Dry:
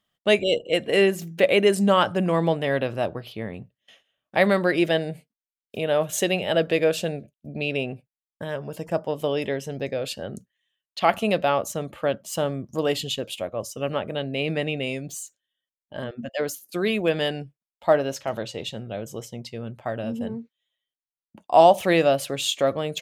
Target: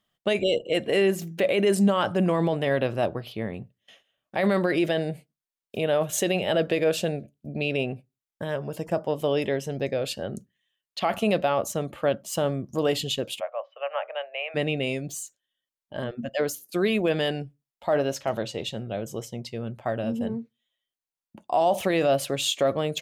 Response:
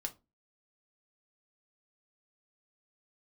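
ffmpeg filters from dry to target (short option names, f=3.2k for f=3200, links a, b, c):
-filter_complex "[0:a]alimiter=limit=-15dB:level=0:latency=1:release=13,asplit=3[a][b][c];[a]afade=t=out:st=13.39:d=0.02[d];[b]asuperpass=centerf=1300:order=12:qfactor=0.55,afade=t=in:st=13.39:d=0.02,afade=t=out:st=14.54:d=0.02[e];[c]afade=t=in:st=14.54:d=0.02[f];[d][e][f]amix=inputs=3:normalize=0,asplit=2[g][h];[1:a]atrim=start_sample=2205,asetrate=52920,aresample=44100,lowpass=1.4k[i];[h][i]afir=irnorm=-1:irlink=0,volume=-12dB[j];[g][j]amix=inputs=2:normalize=0"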